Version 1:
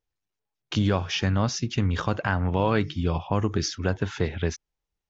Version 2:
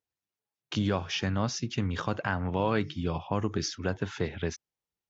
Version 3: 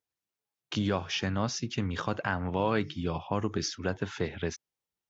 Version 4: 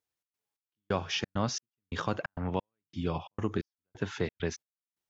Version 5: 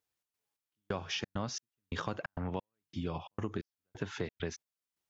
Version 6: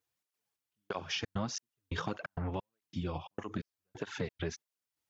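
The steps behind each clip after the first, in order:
high-pass filter 100 Hz; level −4 dB
low-shelf EQ 100 Hz −5 dB
gate pattern "xx.xx...x" 133 BPM −60 dB
downward compressor 2.5 to 1, threshold −37 dBFS, peak gain reduction 9.5 dB; level +1.5 dB
through-zero flanger with one copy inverted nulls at 1.6 Hz, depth 5.5 ms; level +3.5 dB

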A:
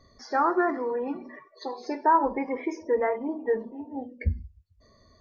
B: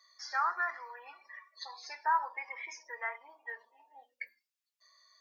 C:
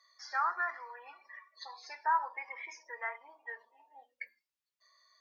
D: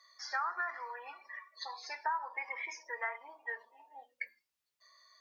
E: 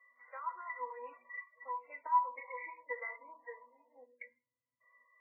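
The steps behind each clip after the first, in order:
Bessel high-pass filter 1,700 Hz, order 4; level +2 dB
high-shelf EQ 4,000 Hz −6.5 dB
downward compressor 6 to 1, threshold −36 dBFS, peak gain reduction 11.5 dB; level +4 dB
resonances in every octave B, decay 0.13 s; dynamic equaliser 770 Hz, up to −4 dB, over −59 dBFS, Q 1.3; level +13.5 dB; MP3 8 kbit/s 12,000 Hz

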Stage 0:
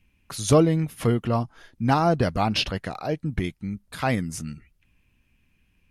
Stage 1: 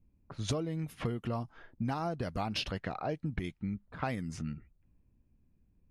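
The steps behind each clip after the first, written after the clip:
low-pass that shuts in the quiet parts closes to 570 Hz, open at −21 dBFS
downward compressor 12 to 1, threshold −28 dBFS, peak gain reduction 16.5 dB
level −2.5 dB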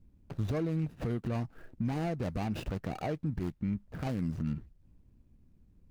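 running median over 41 samples
brickwall limiter −32 dBFS, peak gain reduction 9.5 dB
level +7 dB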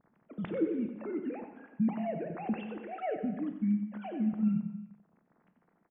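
three sine waves on the formant tracks
on a send: single-tap delay 92 ms −10 dB
on the sum: reverb whose tail is shaped and stops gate 430 ms falling, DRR 7 dB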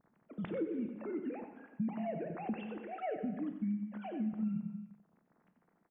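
downward compressor 4 to 1, threshold −30 dBFS, peak gain reduction 6 dB
level −2.5 dB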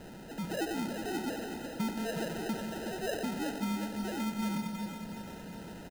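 converter with a step at zero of −41.5 dBFS
decimation without filtering 39×
repeating echo 369 ms, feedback 58%, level −7.5 dB

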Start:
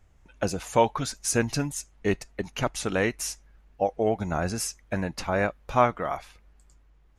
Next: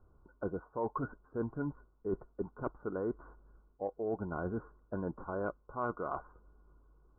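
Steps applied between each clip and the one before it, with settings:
Chebyshev low-pass with heavy ripple 1,500 Hz, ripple 9 dB
reversed playback
downward compressor 5 to 1, threshold −38 dBFS, peak gain reduction 16.5 dB
reversed playback
level +4 dB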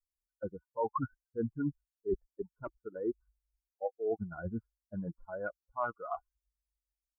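spectral dynamics exaggerated over time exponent 3
level +7 dB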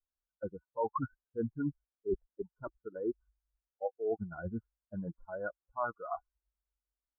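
elliptic low-pass filter 1,600 Hz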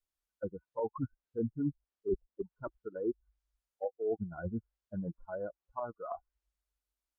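treble cut that deepens with the level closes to 570 Hz, closed at −34.5 dBFS
level +1.5 dB

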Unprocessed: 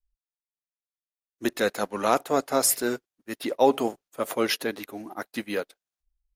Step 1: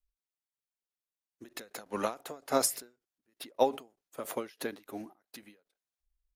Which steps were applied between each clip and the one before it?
every ending faded ahead of time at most 200 dB per second
level −3 dB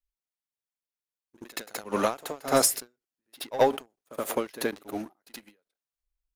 leveller curve on the samples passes 2
echo ahead of the sound 74 ms −14.5 dB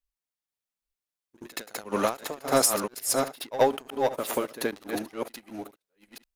delay that plays each chunk backwards 480 ms, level −4 dB

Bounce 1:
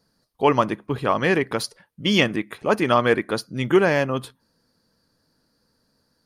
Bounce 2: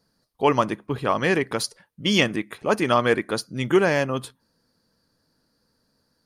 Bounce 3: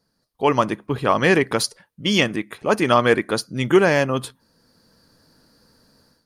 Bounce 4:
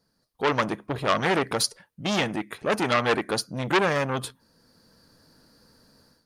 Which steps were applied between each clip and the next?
dynamic equaliser 7,600 Hz, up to +6 dB, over −47 dBFS, Q 0.95; level −1.5 dB
automatic gain control gain up to 13.5 dB; level −1.5 dB
saturating transformer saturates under 2,600 Hz; level −1 dB

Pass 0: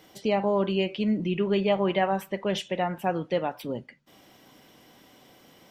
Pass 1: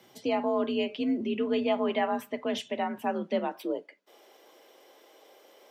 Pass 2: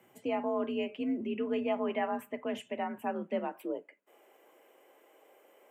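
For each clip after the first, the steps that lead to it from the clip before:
high-pass filter sweep 60 Hz → 420 Hz, 0:02.96–0:03.84; frequency shifter +48 Hz; level −3.5 dB
flat-topped bell 4,500 Hz −15.5 dB 1 octave; level −4.5 dB

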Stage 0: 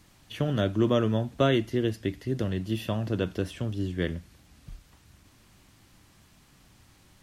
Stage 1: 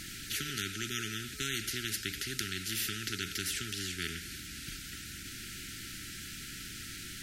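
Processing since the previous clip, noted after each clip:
brick-wall band-stop 430–1,300 Hz
parametric band 450 Hz −8.5 dB 1.7 octaves
every bin compressed towards the loudest bin 4 to 1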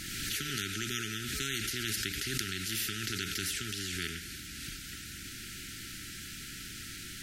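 background raised ahead of every attack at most 25 dB per second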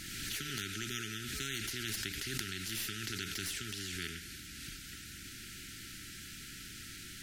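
stylus tracing distortion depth 0.028 ms
level −4 dB

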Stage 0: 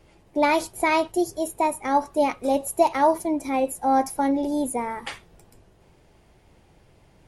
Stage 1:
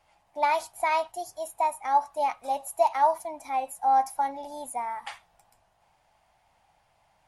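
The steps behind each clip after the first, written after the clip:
low shelf with overshoot 550 Hz −11 dB, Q 3
level −7 dB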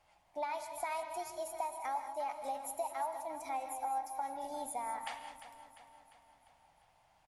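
downward compressor 6 to 1, threshold −32 dBFS, peak gain reduction 14.5 dB
on a send: repeating echo 349 ms, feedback 54%, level −12.5 dB
on the sum: reverb whose tail is shaped and stops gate 230 ms rising, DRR 8.5 dB
level −4 dB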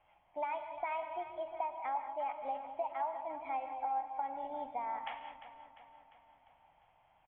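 Chebyshev low-pass with heavy ripple 3,300 Hz, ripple 3 dB
level +1 dB

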